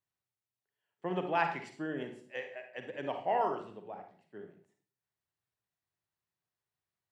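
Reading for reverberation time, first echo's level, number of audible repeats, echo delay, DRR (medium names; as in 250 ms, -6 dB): 0.50 s, no echo, no echo, no echo, 5.0 dB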